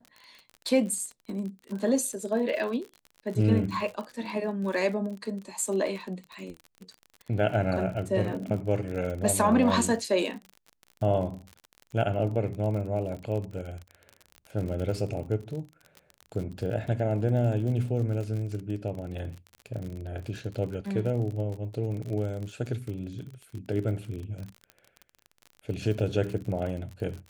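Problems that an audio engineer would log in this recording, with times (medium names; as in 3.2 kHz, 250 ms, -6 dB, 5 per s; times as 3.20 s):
crackle 44 per s -35 dBFS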